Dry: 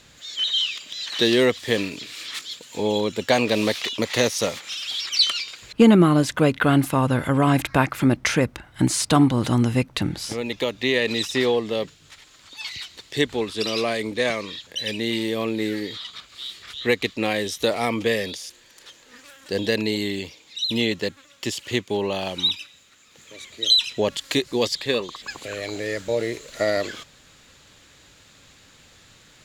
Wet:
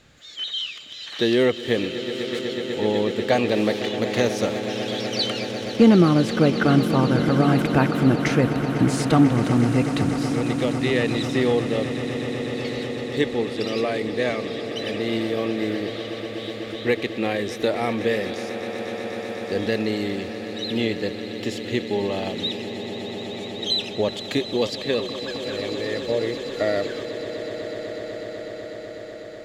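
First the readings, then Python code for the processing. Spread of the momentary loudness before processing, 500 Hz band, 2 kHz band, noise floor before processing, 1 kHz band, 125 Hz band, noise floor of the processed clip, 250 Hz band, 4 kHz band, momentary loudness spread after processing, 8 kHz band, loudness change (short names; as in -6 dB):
14 LU, +1.5 dB, -1.5 dB, -53 dBFS, -0.5 dB, +1.5 dB, -35 dBFS, +1.5 dB, -5.0 dB, 12 LU, -7.5 dB, -0.5 dB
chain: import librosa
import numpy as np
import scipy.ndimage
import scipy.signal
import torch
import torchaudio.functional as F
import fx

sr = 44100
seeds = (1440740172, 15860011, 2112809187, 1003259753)

p1 = fx.high_shelf(x, sr, hz=2900.0, db=-10.5)
p2 = fx.notch(p1, sr, hz=1000.0, q=8.7)
y = p2 + fx.echo_swell(p2, sr, ms=124, loudest=8, wet_db=-15, dry=0)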